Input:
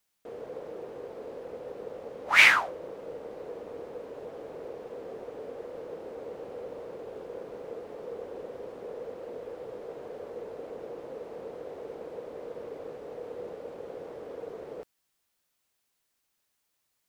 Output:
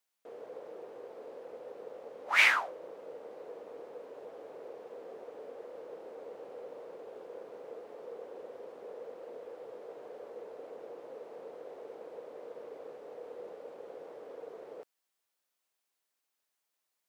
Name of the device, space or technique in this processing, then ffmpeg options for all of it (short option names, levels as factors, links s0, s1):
filter by subtraction: -filter_complex "[0:a]asplit=2[s0][s1];[s1]lowpass=590,volume=-1[s2];[s0][s2]amix=inputs=2:normalize=0,volume=0.473"